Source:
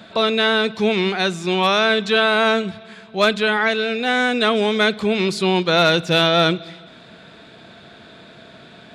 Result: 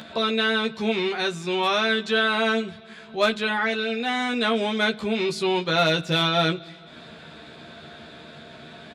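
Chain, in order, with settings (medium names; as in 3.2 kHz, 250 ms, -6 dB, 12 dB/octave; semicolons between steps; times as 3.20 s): upward compressor, threshold -30 dBFS; doubling 13 ms -3 dB; trim -7 dB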